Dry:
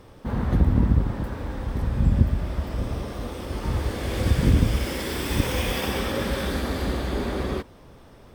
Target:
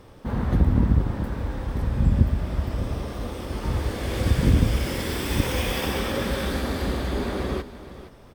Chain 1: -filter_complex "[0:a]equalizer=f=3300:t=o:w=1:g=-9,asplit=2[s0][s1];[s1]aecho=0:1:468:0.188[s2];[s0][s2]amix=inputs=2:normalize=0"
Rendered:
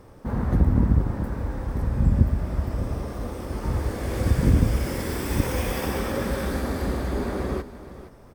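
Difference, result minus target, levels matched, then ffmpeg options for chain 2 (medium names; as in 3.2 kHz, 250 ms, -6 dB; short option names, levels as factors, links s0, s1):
4 kHz band -7.0 dB
-filter_complex "[0:a]asplit=2[s0][s1];[s1]aecho=0:1:468:0.188[s2];[s0][s2]amix=inputs=2:normalize=0"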